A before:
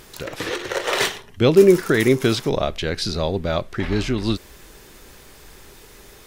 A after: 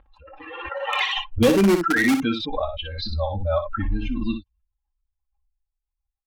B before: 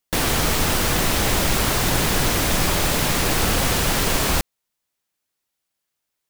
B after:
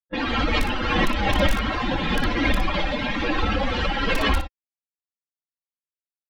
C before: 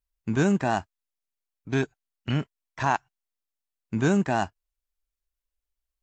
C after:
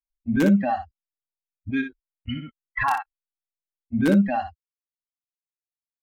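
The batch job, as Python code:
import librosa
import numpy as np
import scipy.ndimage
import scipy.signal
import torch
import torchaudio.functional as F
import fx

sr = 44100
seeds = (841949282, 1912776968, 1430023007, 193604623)

p1 = fx.bin_expand(x, sr, power=3.0)
p2 = scipy.signal.sosfilt(scipy.signal.butter(4, 3400.0, 'lowpass', fs=sr, output='sos'), p1)
p3 = p2 + 0.78 * np.pad(p2, (int(3.7 * sr / 1000.0), 0))[:len(p2)]
p4 = (np.mod(10.0 ** (15.5 / 20.0) * p3 + 1.0, 2.0) - 1.0) / 10.0 ** (15.5 / 20.0)
p5 = p3 + (p4 * librosa.db_to_amplitude(-7.5))
p6 = fx.env_lowpass(p5, sr, base_hz=1100.0, full_db=-22.5)
p7 = p6 + fx.room_early_taps(p6, sr, ms=(25, 60), db=(-15.0, -8.5), dry=0)
y = fx.pre_swell(p7, sr, db_per_s=34.0)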